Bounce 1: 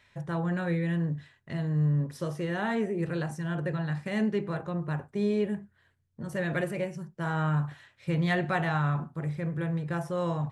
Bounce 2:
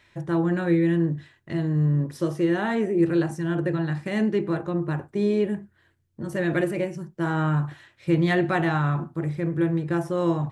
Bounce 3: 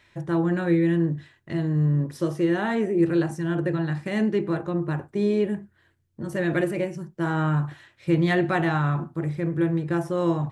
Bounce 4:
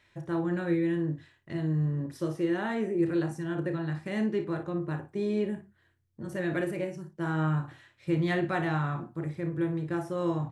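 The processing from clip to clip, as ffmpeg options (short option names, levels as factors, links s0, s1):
-af "equalizer=f=330:w=6.3:g=13.5,volume=1.5"
-af anull
-af "aecho=1:1:32|57:0.282|0.251,volume=0.473"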